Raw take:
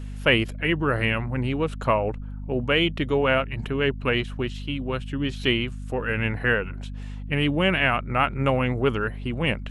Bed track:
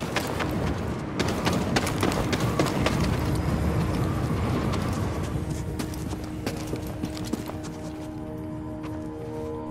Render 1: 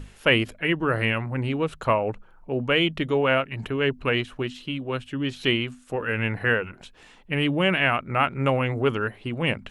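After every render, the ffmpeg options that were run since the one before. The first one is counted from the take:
ffmpeg -i in.wav -af "bandreject=frequency=50:width_type=h:width=6,bandreject=frequency=100:width_type=h:width=6,bandreject=frequency=150:width_type=h:width=6,bandreject=frequency=200:width_type=h:width=6,bandreject=frequency=250:width_type=h:width=6" out.wav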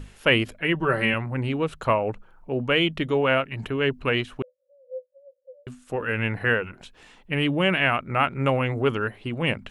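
ffmpeg -i in.wav -filter_complex "[0:a]asettb=1/sr,asplit=3[link_01][link_02][link_03];[link_01]atrim=end=0.744[link_04];[link_02]atrim=start=0.74:end=1.14,asetpts=PTS-STARTPTS,afade=type=in:duration=0.004:curve=qsin,afade=type=out:start_time=0.396:duration=0.004:curve=qsin,aecho=1:1:5.2:0.65,atrim=end_sample=17640[link_05];[link_03]atrim=start=1.136[link_06];[link_04][link_05]acrossfade=duration=0.004:curve1=hsin:curve2=qsin[link_07];[link_07][link_06]acrossfade=duration=0.004:curve1=qsin:curve2=hsin,asettb=1/sr,asplit=3[link_08][link_09][link_10];[link_08]atrim=end=4.424[link_11];[link_09]atrim=start=4.42:end=5.67,asetpts=PTS-STARTPTS,afade=type=in:duration=0.004:curve=qsin,afade=type=out:start_time=1.246:duration=0.004:curve=qsin,asuperpass=centerf=540:order=12:qfactor=7.1[link_12];[link_10]atrim=start=5.666[link_13];[link_11][link_12]acrossfade=duration=0.004:curve1=hsin:curve2=qsin[link_14];[link_14][link_13]acrossfade=duration=0.004:curve1=qsin:curve2=hsin" out.wav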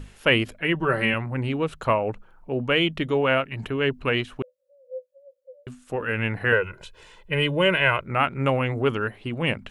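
ffmpeg -i in.wav -filter_complex "[0:a]asettb=1/sr,asplit=3[link_01][link_02][link_03];[link_01]atrim=end=6.524[link_04];[link_02]atrim=start=6.52:end=8.06,asetpts=PTS-STARTPTS,afade=type=in:duration=0.004:curve=qsin,afade=type=out:start_time=1.536:duration=0.004:curve=qsin,aecho=1:1:2:0.79,atrim=end_sample=67914[link_05];[link_03]atrim=start=8.056[link_06];[link_04][link_05]acrossfade=duration=0.004:curve1=hsin:curve2=qsin[link_07];[link_07][link_06]acrossfade=duration=0.004:curve1=qsin:curve2=hsin" out.wav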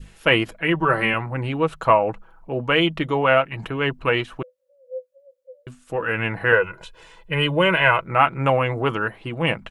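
ffmpeg -i in.wav -af "aecho=1:1:6.1:0.39,adynamicequalizer=threshold=0.0158:dfrequency=950:dqfactor=0.93:tfrequency=950:tqfactor=0.93:attack=5:release=100:ratio=0.375:range=3.5:mode=boostabove:tftype=bell" out.wav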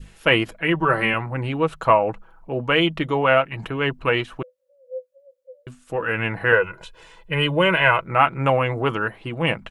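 ffmpeg -i in.wav -af anull out.wav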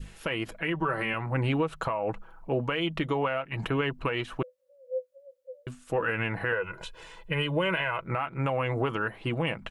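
ffmpeg -i in.wav -af "acompressor=threshold=-20dB:ratio=10,alimiter=limit=-18dB:level=0:latency=1:release=230" out.wav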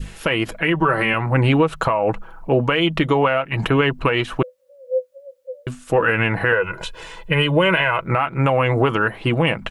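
ffmpeg -i in.wav -af "volume=11dB" out.wav

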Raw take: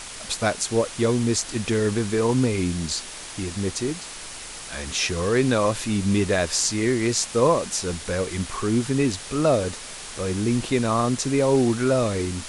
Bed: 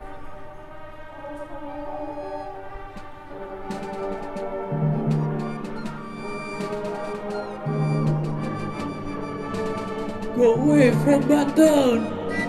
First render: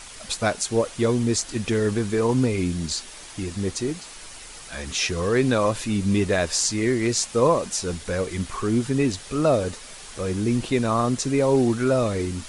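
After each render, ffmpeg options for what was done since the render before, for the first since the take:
ffmpeg -i in.wav -af "afftdn=noise_reduction=6:noise_floor=-38" out.wav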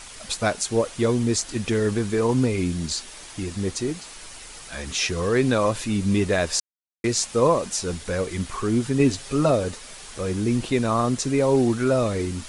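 ffmpeg -i in.wav -filter_complex "[0:a]asettb=1/sr,asplit=3[link_01][link_02][link_03];[link_01]atrim=end=8.994[link_04];[link_02]atrim=start=8.99:end=9.51,asetpts=PTS-STARTPTS,afade=type=in:duration=0.004:curve=qsin,afade=type=out:start_time=0.516:duration=0.004:curve=qsin,aecho=1:1:7.4:0.59,atrim=end_sample=22932[link_05];[link_03]atrim=start=9.506[link_06];[link_04][link_05]acrossfade=duration=0.004:curve1=hsin:curve2=qsin[link_07];[link_07][link_06]acrossfade=duration=0.004:curve1=qsin:curve2=hsin,asplit=3[link_08][link_09][link_10];[link_08]atrim=end=6.6,asetpts=PTS-STARTPTS,afade=type=out:start_time=6.596:duration=0.004:curve=hsin[link_11];[link_09]atrim=start=6.6:end=7.04,asetpts=PTS-STARTPTS,volume=0[link_12];[link_10]atrim=start=7.04,asetpts=PTS-STARTPTS,afade=type=in:duration=0.004:curve=hsin[link_13];[link_11][link_12][link_13]concat=n=3:v=0:a=1" out.wav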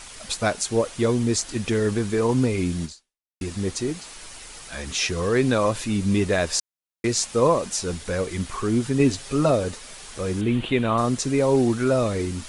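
ffmpeg -i in.wav -filter_complex "[0:a]asettb=1/sr,asplit=3[link_01][link_02][link_03];[link_01]atrim=end=10.414[link_04];[link_02]atrim=start=10.41:end=10.98,asetpts=PTS-STARTPTS,afade=type=in:duration=0.004:curve=qsin,afade=type=out:start_time=0.566:duration=0.004:curve=qsin,highshelf=frequency=4100:width_type=q:width=3:gain=-9[link_05];[link_03]atrim=start=10.976[link_06];[link_04][link_05]acrossfade=duration=0.004:curve1=hsin:curve2=qsin[link_07];[link_07][link_06]acrossfade=duration=0.004:curve1=qsin:curve2=hsin,asplit=2[link_08][link_09];[link_08]atrim=end=3.41,asetpts=PTS-STARTPTS,afade=type=out:start_time=2.84:duration=0.57:curve=exp[link_10];[link_09]atrim=start=3.41,asetpts=PTS-STARTPTS,afade=type=in:duration=0.004:curve=hsin[link_11];[link_10][link_11]concat=n=2:v=0:a=1" out.wav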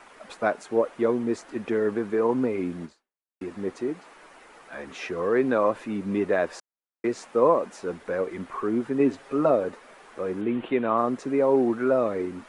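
ffmpeg -i in.wav -filter_complex "[0:a]acrossover=split=220 2000:gain=0.0708 1 0.0794[link_01][link_02][link_03];[link_01][link_02][link_03]amix=inputs=3:normalize=0" out.wav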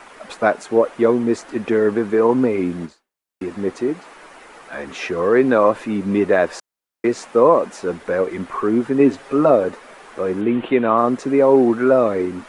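ffmpeg -i in.wav -af "volume=8dB,alimiter=limit=-3dB:level=0:latency=1" out.wav

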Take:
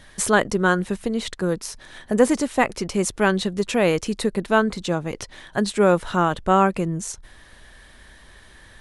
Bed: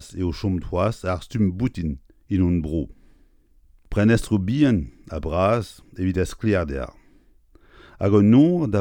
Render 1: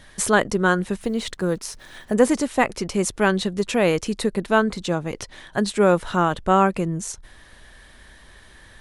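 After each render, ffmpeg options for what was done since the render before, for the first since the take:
ffmpeg -i in.wav -filter_complex "[0:a]asettb=1/sr,asplit=3[link_01][link_02][link_03];[link_01]atrim=end=1.014[link_04];[link_02]atrim=start=1.01:end=2.13,asetpts=PTS-STARTPTS,afade=type=in:duration=0.004:curve=qsin,afade=type=out:start_time=1.116:duration=0.004:curve=qsin,acrusher=bits=8:mix=0:aa=0.5[link_05];[link_03]atrim=start=2.126[link_06];[link_04][link_05]acrossfade=duration=0.004:curve1=hsin:curve2=qsin[link_07];[link_07][link_06]acrossfade=duration=0.004:curve1=qsin:curve2=hsin" out.wav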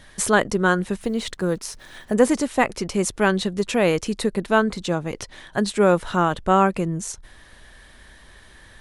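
ffmpeg -i in.wav -af anull out.wav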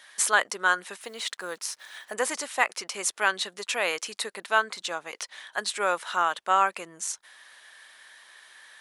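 ffmpeg -i in.wav -af "highpass=1000" out.wav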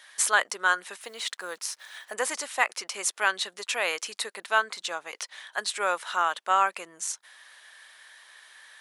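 ffmpeg -i in.wav -af "highpass=frequency=420:poles=1" out.wav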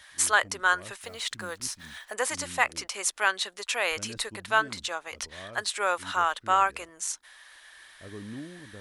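ffmpeg -i in.wav -i bed.wav -filter_complex "[1:a]volume=-26dB[link_01];[0:a][link_01]amix=inputs=2:normalize=0" out.wav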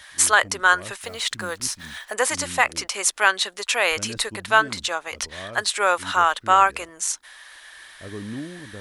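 ffmpeg -i in.wav -af "volume=7dB,alimiter=limit=-3dB:level=0:latency=1" out.wav

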